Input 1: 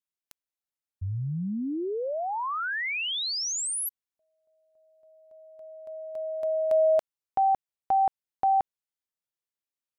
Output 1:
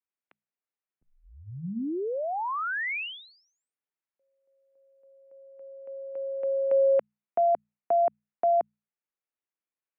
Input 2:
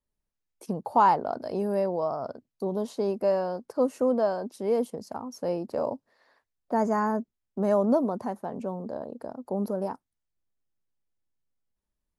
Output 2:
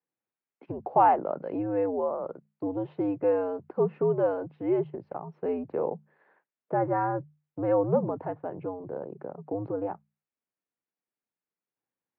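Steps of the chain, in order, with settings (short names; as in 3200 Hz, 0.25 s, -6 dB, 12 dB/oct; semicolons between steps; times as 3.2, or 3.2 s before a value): notches 60/120/180/240/300 Hz; mistuned SSB -90 Hz 270–2700 Hz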